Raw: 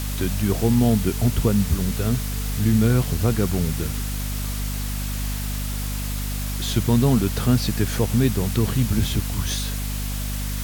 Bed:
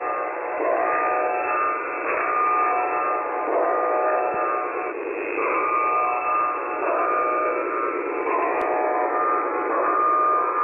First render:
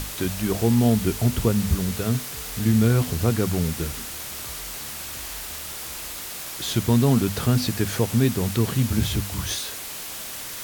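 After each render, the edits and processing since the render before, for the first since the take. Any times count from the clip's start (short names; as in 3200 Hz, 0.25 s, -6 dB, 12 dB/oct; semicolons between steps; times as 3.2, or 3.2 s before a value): notches 50/100/150/200/250 Hz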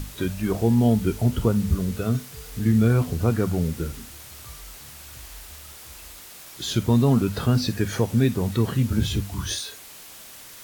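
noise print and reduce 9 dB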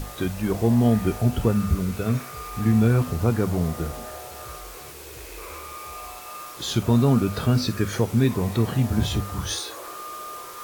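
add bed -17.5 dB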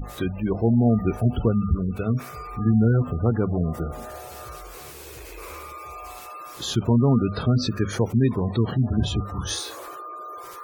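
spectral gate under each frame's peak -25 dB strong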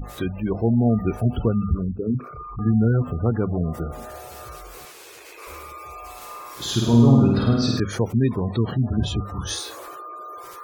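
1.88–2.59 formant sharpening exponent 3; 4.85–5.47 weighting filter A; 6.16–7.8 flutter echo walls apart 8.8 m, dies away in 1.1 s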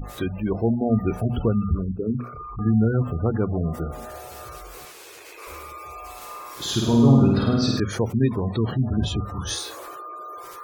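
notches 60/120/180/240 Hz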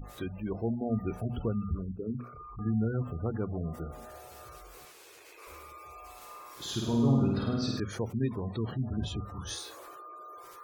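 gain -10 dB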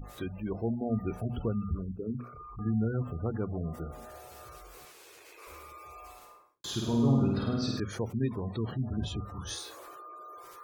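6.04–6.64 studio fade out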